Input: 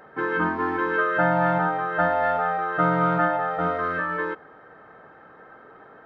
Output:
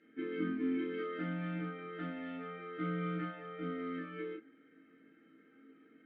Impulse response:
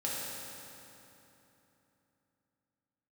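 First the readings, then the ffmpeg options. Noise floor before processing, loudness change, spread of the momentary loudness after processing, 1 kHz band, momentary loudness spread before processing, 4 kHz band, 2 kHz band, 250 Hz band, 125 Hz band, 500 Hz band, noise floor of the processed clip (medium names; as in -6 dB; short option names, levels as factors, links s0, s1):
-49 dBFS, -16.5 dB, 8 LU, -24.5 dB, 6 LU, no reading, -21.5 dB, -8.0 dB, -12.0 dB, -16.5 dB, -65 dBFS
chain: -filter_complex "[0:a]acontrast=37,asplit=3[s0][s1][s2];[s0]bandpass=f=270:t=q:w=8,volume=1[s3];[s1]bandpass=f=2290:t=q:w=8,volume=0.501[s4];[s2]bandpass=f=3010:t=q:w=8,volume=0.355[s5];[s3][s4][s5]amix=inputs=3:normalize=0[s6];[1:a]atrim=start_sample=2205,atrim=end_sample=4410,asetrate=70560,aresample=44100[s7];[s6][s7]afir=irnorm=-1:irlink=0,volume=0.794"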